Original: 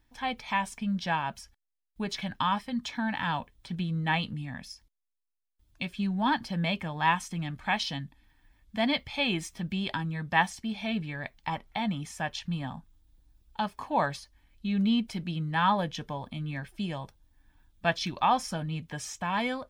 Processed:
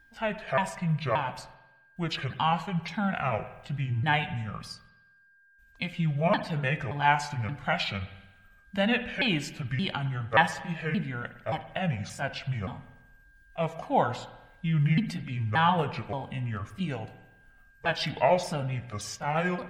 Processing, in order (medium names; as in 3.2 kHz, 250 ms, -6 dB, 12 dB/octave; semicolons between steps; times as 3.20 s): sawtooth pitch modulation -7 st, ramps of 576 ms; whistle 1.6 kHz -60 dBFS; spring tank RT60 1 s, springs 51/55 ms, chirp 40 ms, DRR 11.5 dB; trim +2.5 dB